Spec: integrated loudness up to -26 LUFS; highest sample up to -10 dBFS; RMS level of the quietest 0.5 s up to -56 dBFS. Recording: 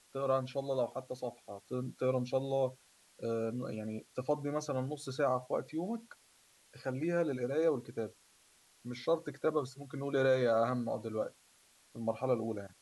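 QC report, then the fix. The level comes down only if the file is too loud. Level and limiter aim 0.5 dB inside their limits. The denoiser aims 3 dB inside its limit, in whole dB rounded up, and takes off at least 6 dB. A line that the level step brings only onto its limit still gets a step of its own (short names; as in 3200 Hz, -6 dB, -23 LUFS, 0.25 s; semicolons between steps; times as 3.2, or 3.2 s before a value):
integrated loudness -35.5 LUFS: OK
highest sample -18.5 dBFS: OK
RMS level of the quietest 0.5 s -66 dBFS: OK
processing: none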